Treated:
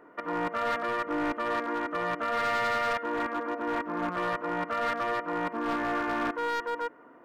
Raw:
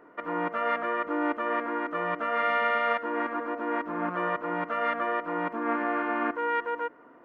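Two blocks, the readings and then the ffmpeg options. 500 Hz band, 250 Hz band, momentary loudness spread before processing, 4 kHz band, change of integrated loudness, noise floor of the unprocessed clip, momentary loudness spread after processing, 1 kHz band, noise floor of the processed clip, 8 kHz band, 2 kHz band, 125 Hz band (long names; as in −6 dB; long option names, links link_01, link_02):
−1.5 dB, −1.0 dB, 6 LU, +4.0 dB, −1.5 dB, −54 dBFS, 5 LU, −1.5 dB, −54 dBFS, can't be measured, −1.5 dB, +1.5 dB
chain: -af "volume=24.5dB,asoftclip=hard,volume=-24.5dB"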